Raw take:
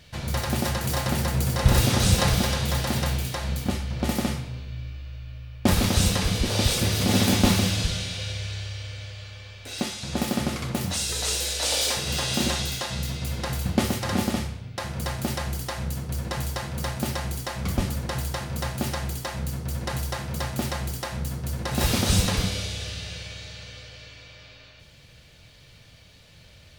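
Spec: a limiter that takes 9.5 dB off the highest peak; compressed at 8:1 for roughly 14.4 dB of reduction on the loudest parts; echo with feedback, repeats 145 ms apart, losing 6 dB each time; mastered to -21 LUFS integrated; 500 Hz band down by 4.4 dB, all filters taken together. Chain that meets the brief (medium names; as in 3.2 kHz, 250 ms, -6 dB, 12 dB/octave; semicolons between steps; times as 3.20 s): peaking EQ 500 Hz -5.5 dB; compression 8:1, threshold -28 dBFS; peak limiter -25 dBFS; feedback delay 145 ms, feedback 50%, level -6 dB; trim +12.5 dB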